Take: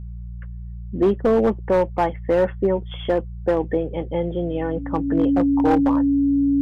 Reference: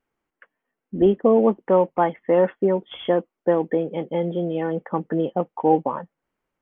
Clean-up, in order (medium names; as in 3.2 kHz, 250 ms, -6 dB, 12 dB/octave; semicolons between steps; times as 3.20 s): clip repair -11.5 dBFS; de-hum 58.5 Hz, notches 3; band-stop 280 Hz, Q 30